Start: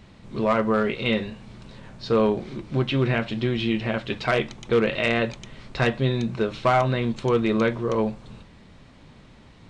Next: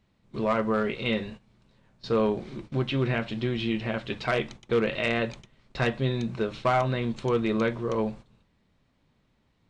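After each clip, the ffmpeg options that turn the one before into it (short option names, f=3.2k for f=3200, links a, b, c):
-af "agate=range=-15dB:threshold=-37dB:ratio=16:detection=peak,volume=-4dB"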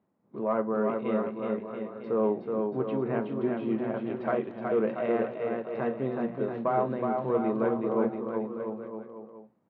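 -filter_complex "[0:a]tremolo=f=3.5:d=0.29,asuperpass=centerf=480:order=4:qfactor=0.53,asplit=2[a][b];[b]aecho=0:1:370|684.5|951.8|1179|1372:0.631|0.398|0.251|0.158|0.1[c];[a][c]amix=inputs=2:normalize=0"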